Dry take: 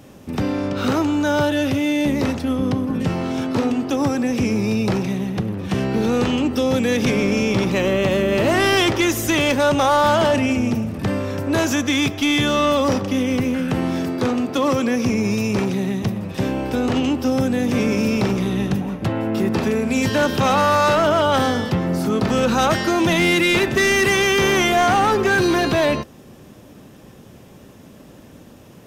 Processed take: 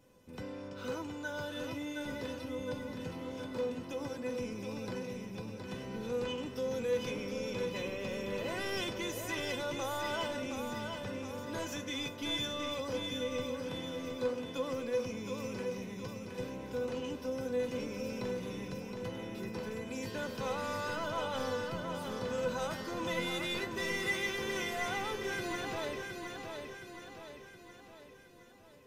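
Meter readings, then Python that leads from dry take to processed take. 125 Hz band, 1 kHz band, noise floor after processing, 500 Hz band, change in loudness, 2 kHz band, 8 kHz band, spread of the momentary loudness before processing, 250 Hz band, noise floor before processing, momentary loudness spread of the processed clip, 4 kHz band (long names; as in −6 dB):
−21.5 dB, −20.0 dB, −54 dBFS, −16.5 dB, −18.5 dB, −17.5 dB, −17.5 dB, 7 LU, −21.5 dB, −44 dBFS, 8 LU, −15.5 dB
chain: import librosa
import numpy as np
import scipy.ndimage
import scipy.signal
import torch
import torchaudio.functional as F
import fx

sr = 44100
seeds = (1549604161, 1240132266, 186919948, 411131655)

y = fx.comb_fb(x, sr, f0_hz=500.0, decay_s=0.16, harmonics='all', damping=0.0, mix_pct=90)
y = fx.echo_feedback(y, sr, ms=718, feedback_pct=51, wet_db=-5.5)
y = y * librosa.db_to_amplitude(-6.0)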